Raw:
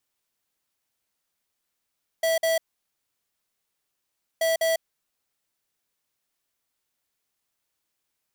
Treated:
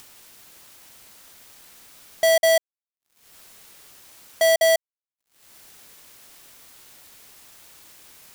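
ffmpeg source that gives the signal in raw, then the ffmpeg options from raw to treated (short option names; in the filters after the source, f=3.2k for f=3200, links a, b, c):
-f lavfi -i "aevalsrc='0.075*(2*lt(mod(654*t,1),0.5)-1)*clip(min(mod(mod(t,2.18),0.2),0.15-mod(mod(t,2.18),0.2))/0.005,0,1)*lt(mod(t,2.18),0.4)':d=4.36:s=44100"
-filter_complex "[0:a]asplit=2[a][b];[b]acompressor=mode=upward:threshold=-27dB:ratio=2.5,volume=1dB[c];[a][c]amix=inputs=2:normalize=0,acrusher=bits=7:mix=0:aa=0.5"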